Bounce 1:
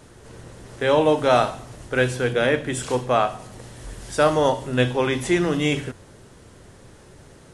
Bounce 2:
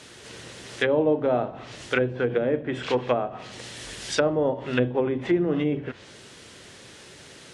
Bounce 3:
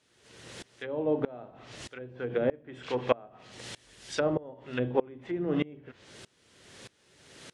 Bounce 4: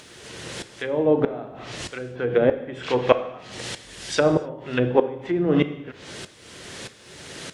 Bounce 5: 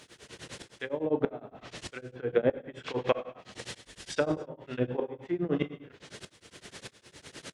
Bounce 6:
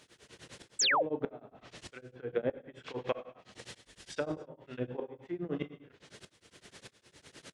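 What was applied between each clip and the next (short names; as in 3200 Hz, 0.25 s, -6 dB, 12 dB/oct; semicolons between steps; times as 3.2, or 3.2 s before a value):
weighting filter D; treble ducked by the level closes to 500 Hz, closed at -15.5 dBFS
dB-ramp tremolo swelling 1.6 Hz, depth 25 dB
in parallel at 0 dB: upward compressor, threshold -36 dBFS; on the sum: non-linear reverb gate 0.31 s falling, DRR 10.5 dB; gain +3 dB
tremolo triangle 9.8 Hz, depth 100%; gain -4.5 dB
painted sound fall, 0.79–1.03, 440–8400 Hz -20 dBFS; gain -7 dB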